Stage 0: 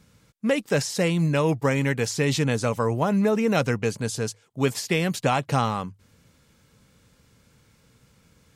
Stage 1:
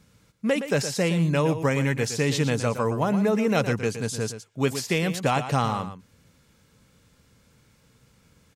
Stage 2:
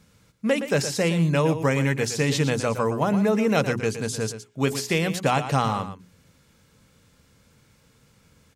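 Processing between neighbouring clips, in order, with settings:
delay 117 ms -10.5 dB; trim -1 dB
hum notches 60/120/180/240/300/360/420 Hz; trim +1.5 dB

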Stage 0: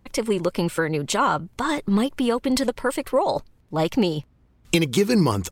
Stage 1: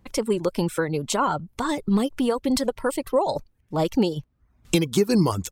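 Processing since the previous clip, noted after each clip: reverb removal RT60 0.53 s; dynamic bell 2.1 kHz, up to -6 dB, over -40 dBFS, Q 0.99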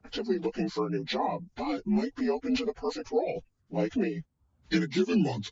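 frequency axis rescaled in octaves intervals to 81%; trim -4.5 dB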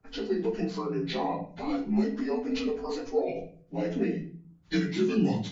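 simulated room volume 47 m³, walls mixed, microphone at 0.58 m; trim -4 dB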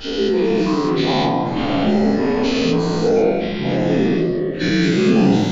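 every event in the spectrogram widened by 240 ms; ever faster or slower copies 335 ms, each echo -4 st, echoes 2, each echo -6 dB; trim +5.5 dB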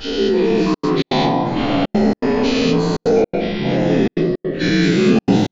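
trance gate "xxxxxxxx.xx." 162 bpm -60 dB; trim +1.5 dB

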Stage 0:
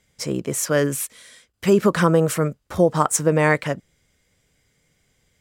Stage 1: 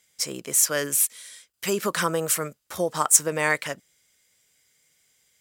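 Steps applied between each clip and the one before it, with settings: tilt EQ +3.5 dB/octave; trim -5 dB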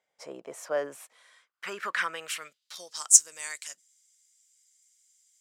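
band-pass sweep 710 Hz -> 7.1 kHz, 1.03–3.22 s; trim +3.5 dB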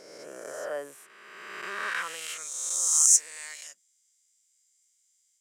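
reverse spectral sustain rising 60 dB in 1.82 s; trim -7 dB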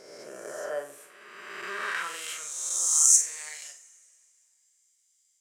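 on a send: flutter echo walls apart 7.9 m, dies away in 0.32 s; on the sum: two-slope reverb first 0.24 s, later 2.5 s, from -22 dB, DRR 7.5 dB; trim -1 dB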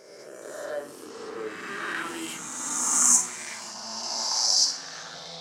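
coarse spectral quantiser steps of 15 dB; ever faster or slower copies 423 ms, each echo -5 st, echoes 3

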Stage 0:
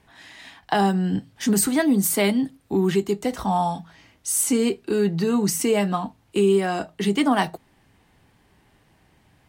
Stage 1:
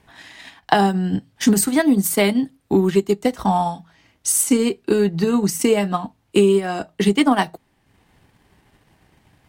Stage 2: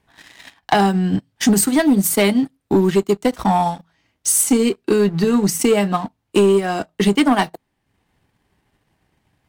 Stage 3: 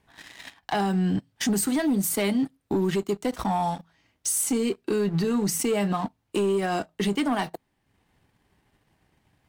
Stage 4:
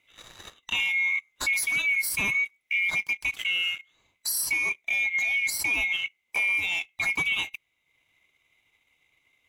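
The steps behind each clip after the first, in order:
transient shaper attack +6 dB, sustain -6 dB; trim +2 dB
waveshaping leveller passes 2; trim -4.5 dB
peak limiter -17 dBFS, peak gain reduction 11.5 dB; trim -1.5 dB
split-band scrambler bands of 2 kHz; trim -2 dB

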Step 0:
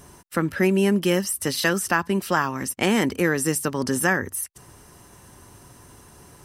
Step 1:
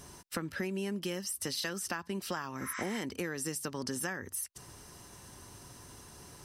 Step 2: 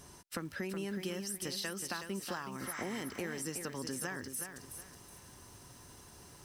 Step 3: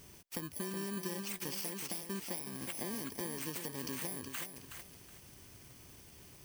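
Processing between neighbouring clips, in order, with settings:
spectral replace 2.63–2.96 s, 990–9300 Hz both; peaking EQ 4.8 kHz +6.5 dB 1.3 oct; compression, threshold -29 dBFS, peak gain reduction 14 dB; trim -4.5 dB
bit-crushed delay 370 ms, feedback 35%, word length 9-bit, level -7 dB; trim -3.5 dB
bit-reversed sample order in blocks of 32 samples; trim -1 dB

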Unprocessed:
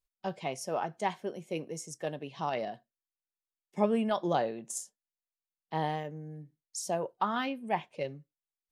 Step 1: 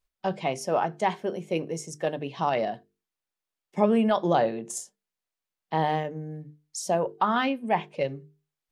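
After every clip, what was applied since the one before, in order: treble shelf 5.1 kHz -7.5 dB; hum notches 50/100/150/200/250/300/350/400/450 Hz; in parallel at -0.5 dB: peak limiter -23 dBFS, peak gain reduction 8.5 dB; on the sum: trim +2.5 dB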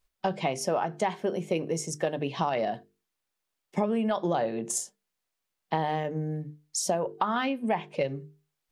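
compression 6:1, threshold -29 dBFS, peak gain reduction 13 dB; trim +5 dB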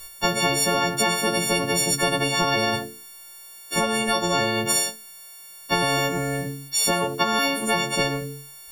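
partials quantised in pitch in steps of 4 st; spectrum-flattening compressor 4:1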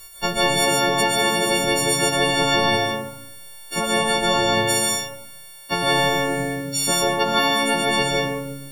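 algorithmic reverb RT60 0.96 s, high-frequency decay 0.45×, pre-delay 100 ms, DRR -2.5 dB; trim -1.5 dB

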